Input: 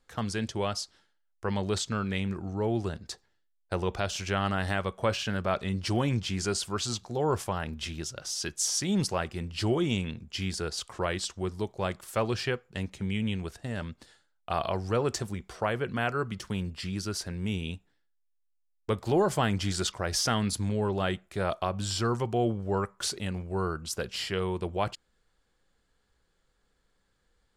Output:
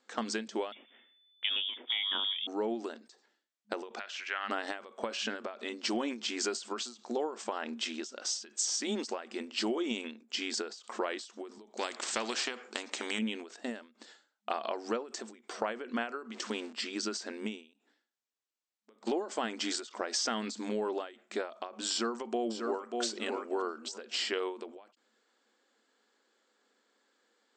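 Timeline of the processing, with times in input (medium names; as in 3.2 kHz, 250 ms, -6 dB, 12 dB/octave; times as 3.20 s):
0.72–2.47 s: frequency inversion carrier 3.5 kHz
3.99–4.50 s: band-pass filter 1.9 kHz, Q 1.9
11.77–13.19 s: spectrum-flattening compressor 2:1
16.32–16.73 s: jump at every zero crossing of -43.5 dBFS
17.73–19.07 s: compression 10:1, threshold -52 dBFS
21.91–23.02 s: echo throw 590 ms, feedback 20%, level -9 dB
whole clip: FFT band-pass 210–8400 Hz; compression, threshold -33 dBFS; endings held to a fixed fall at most 140 dB/s; trim +3.5 dB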